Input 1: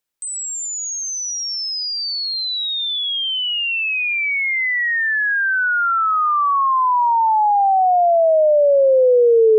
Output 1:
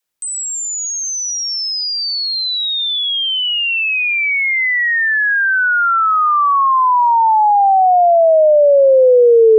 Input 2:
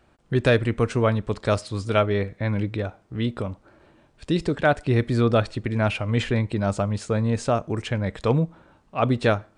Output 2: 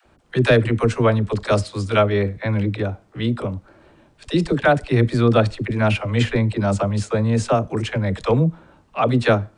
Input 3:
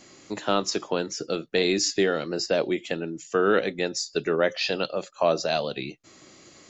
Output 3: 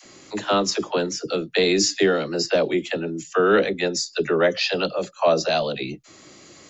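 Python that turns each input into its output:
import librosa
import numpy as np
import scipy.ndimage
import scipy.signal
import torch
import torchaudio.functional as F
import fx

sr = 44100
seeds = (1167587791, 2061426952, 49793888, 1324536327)

y = fx.dispersion(x, sr, late='lows', ms=55.0, hz=400.0)
y = F.gain(torch.from_numpy(y), 4.0).numpy()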